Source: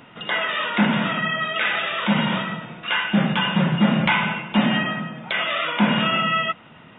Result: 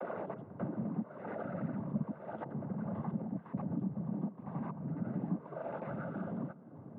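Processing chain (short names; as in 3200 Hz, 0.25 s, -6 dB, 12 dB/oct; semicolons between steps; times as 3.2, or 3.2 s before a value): slices in reverse order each 84 ms, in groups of 7; Bessel low-pass 510 Hz, order 4; compressor 5:1, threshold -37 dBFS, peak gain reduction 20.5 dB; noise vocoder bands 16; on a send: reverb RT60 1.7 s, pre-delay 0.113 s, DRR 20 dB; on the sum: gain +1 dB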